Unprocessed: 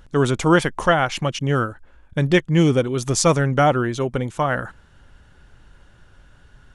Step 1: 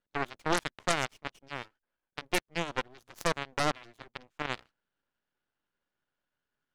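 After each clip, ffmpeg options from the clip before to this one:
-filter_complex "[0:a]acrossover=split=190 5900:gain=0.0794 1 0.178[s0][s1][s2];[s0][s1][s2]amix=inputs=3:normalize=0,aeval=exprs='max(val(0),0)':c=same,aeval=exprs='0.668*(cos(1*acos(clip(val(0)/0.668,-1,1)))-cos(1*PI/2))+0.188*(cos(4*acos(clip(val(0)/0.668,-1,1)))-cos(4*PI/2))+0.0841*(cos(5*acos(clip(val(0)/0.668,-1,1)))-cos(5*PI/2))+0.15*(cos(7*acos(clip(val(0)/0.668,-1,1)))-cos(7*PI/2))':c=same"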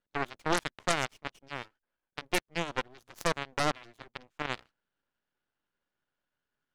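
-af anull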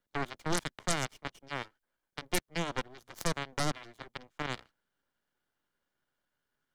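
-filter_complex "[0:a]bandreject=f=2600:w=13,acrossover=split=270|4700[s0][s1][s2];[s1]alimiter=level_in=1.19:limit=0.0631:level=0:latency=1:release=48,volume=0.841[s3];[s0][s3][s2]amix=inputs=3:normalize=0,volume=1.33"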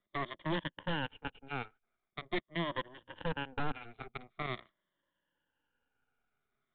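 -af "afftfilt=real='re*pow(10,13/40*sin(2*PI*(1.2*log(max(b,1)*sr/1024/100)/log(2)-(-0.44)*(pts-256)/sr)))':imag='im*pow(10,13/40*sin(2*PI*(1.2*log(max(b,1)*sr/1024/100)/log(2)-(-0.44)*(pts-256)/sr)))':win_size=1024:overlap=0.75,aresample=8000,asoftclip=type=tanh:threshold=0.0473,aresample=44100,volume=0.891"

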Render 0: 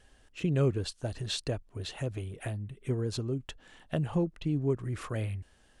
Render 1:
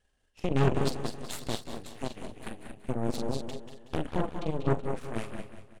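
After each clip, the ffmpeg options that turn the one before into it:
-filter_complex "[0:a]asplit=2[s0][s1];[s1]aecho=0:1:43.73|198.3|242:0.447|0.501|0.398[s2];[s0][s2]amix=inputs=2:normalize=0,aeval=exprs='0.237*(cos(1*acos(clip(val(0)/0.237,-1,1)))-cos(1*PI/2))+0.00944*(cos(3*acos(clip(val(0)/0.237,-1,1)))-cos(3*PI/2))+0.00188*(cos(5*acos(clip(val(0)/0.237,-1,1)))-cos(5*PI/2))+0.0376*(cos(7*acos(clip(val(0)/0.237,-1,1)))-cos(7*PI/2))+0.0299*(cos(8*acos(clip(val(0)/0.237,-1,1)))-cos(8*PI/2))':c=same,asplit=2[s3][s4];[s4]aecho=0:1:186|372|558|744|930:0.282|0.127|0.0571|0.0257|0.0116[s5];[s3][s5]amix=inputs=2:normalize=0"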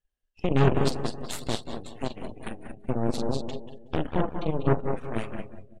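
-af "afftdn=nr=21:nf=-52,volume=1.58"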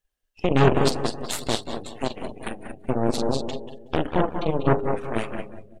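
-af "bass=f=250:g=-5,treble=f=4000:g=1,bandreject=f=101.8:t=h:w=4,bandreject=f=203.6:t=h:w=4,bandreject=f=305.4:t=h:w=4,bandreject=f=407.2:t=h:w=4,bandreject=f=509:t=h:w=4,volume=2"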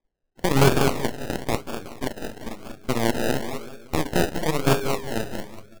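-af "acrusher=samples=31:mix=1:aa=0.000001:lfo=1:lforange=18.6:lforate=1"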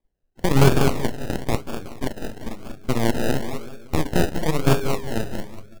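-af "lowshelf=f=220:g=7,volume=0.891"

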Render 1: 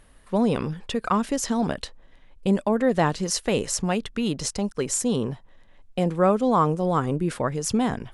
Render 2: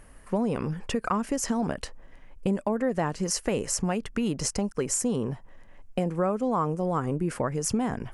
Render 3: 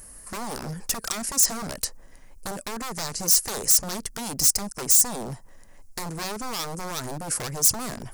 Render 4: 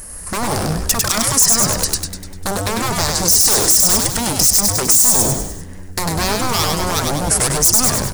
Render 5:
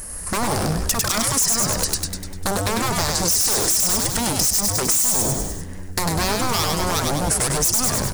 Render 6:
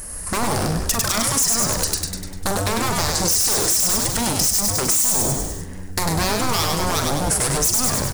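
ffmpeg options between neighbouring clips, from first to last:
-af "equalizer=f=3700:t=o:w=0.46:g=-12.5,acompressor=threshold=0.0355:ratio=3,volume=1.5"
-af "aeval=exprs='0.0422*(abs(mod(val(0)/0.0422+3,4)-2)-1)':c=same,aexciter=amount=7.1:drive=2.8:freq=4400"
-filter_complex "[0:a]asplit=2[s0][s1];[s1]asplit=6[s2][s3][s4][s5][s6][s7];[s2]adelay=99,afreqshift=-99,volume=0.708[s8];[s3]adelay=198,afreqshift=-198,volume=0.347[s9];[s4]adelay=297,afreqshift=-297,volume=0.17[s10];[s5]adelay=396,afreqshift=-396,volume=0.0832[s11];[s6]adelay=495,afreqshift=-495,volume=0.0407[s12];[s7]adelay=594,afreqshift=-594,volume=0.02[s13];[s8][s9][s10][s11][s12][s13]amix=inputs=6:normalize=0[s14];[s0][s14]amix=inputs=2:normalize=0,alimiter=level_in=4.22:limit=0.891:release=50:level=0:latency=1,volume=0.891"
-af "asoftclip=type=hard:threshold=0.355,acompressor=threshold=0.126:ratio=3"
-filter_complex "[0:a]asplit=2[s0][s1];[s1]adelay=43,volume=0.316[s2];[s0][s2]amix=inputs=2:normalize=0"

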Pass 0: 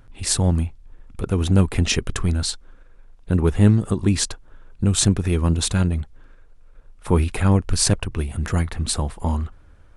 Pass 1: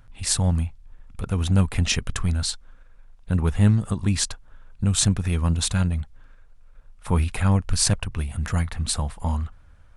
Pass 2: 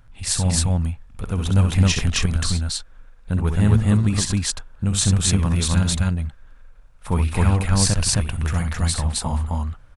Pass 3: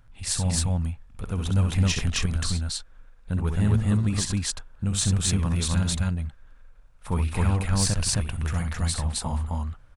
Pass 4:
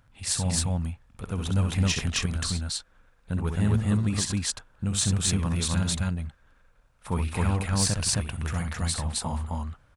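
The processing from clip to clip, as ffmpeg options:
-af "equalizer=f=360:t=o:w=0.85:g=-10.5,volume=0.841"
-af "aecho=1:1:64.14|265.3:0.447|1"
-af "asoftclip=type=tanh:threshold=0.501,volume=0.596"
-af "highpass=f=90:p=1"

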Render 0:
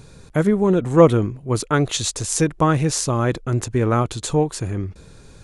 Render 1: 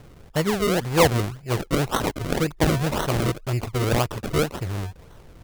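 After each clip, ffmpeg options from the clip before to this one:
-filter_complex "[0:a]equalizer=f=250:t=o:w=1:g=-7,equalizer=f=1000:t=o:w=1:g=4,equalizer=f=4000:t=o:w=1:g=12,equalizer=f=8000:t=o:w=1:g=4,acrossover=split=1300[s0][s1];[s0]acontrast=73[s2];[s2][s1]amix=inputs=2:normalize=0,acrusher=samples=36:mix=1:aa=0.000001:lfo=1:lforange=36:lforate=1.9,volume=0.376"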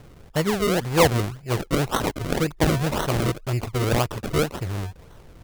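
-af anull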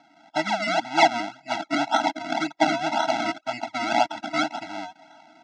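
-af "dynaudnorm=f=120:g=3:m=2,highpass=f=340:w=0.5412,highpass=f=340:w=1.3066,equalizer=f=490:t=q:w=4:g=9,equalizer=f=1500:t=q:w=4:g=-4,equalizer=f=2800:t=q:w=4:g=-3,equalizer=f=4700:t=q:w=4:g=-3,lowpass=f=5300:w=0.5412,lowpass=f=5300:w=1.3066,afftfilt=real='re*eq(mod(floor(b*sr/1024/320),2),0)':imag='im*eq(mod(floor(b*sr/1024/320),2),0)':win_size=1024:overlap=0.75,volume=1.26"

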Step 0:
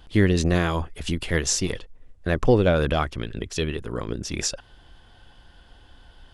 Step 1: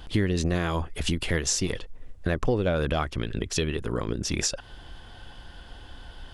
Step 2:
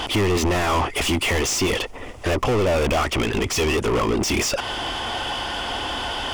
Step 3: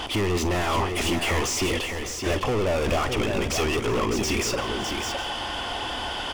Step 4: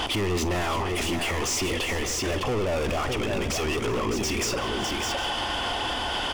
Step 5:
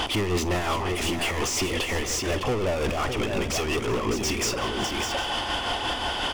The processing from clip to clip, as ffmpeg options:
-af "acompressor=threshold=0.0251:ratio=3,volume=2.11"
-filter_complex "[0:a]asplit=2[s0][s1];[s1]highpass=f=720:p=1,volume=70.8,asoftclip=type=tanh:threshold=0.266[s2];[s0][s2]amix=inputs=2:normalize=0,lowpass=f=3600:p=1,volume=0.501,equalizer=f=160:t=o:w=0.33:g=-10,equalizer=f=500:t=o:w=0.33:g=-3,equalizer=f=1600:t=o:w=0.33:g=-10,equalizer=f=4000:t=o:w=0.33:g=-8"
-af "aecho=1:1:45|376|608|761:0.2|0.112|0.501|0.126,volume=0.596"
-af "alimiter=level_in=1.12:limit=0.0631:level=0:latency=1:release=60,volume=0.891,volume=1.78"
-af "tremolo=f=5.6:d=0.37,volume=1.26"

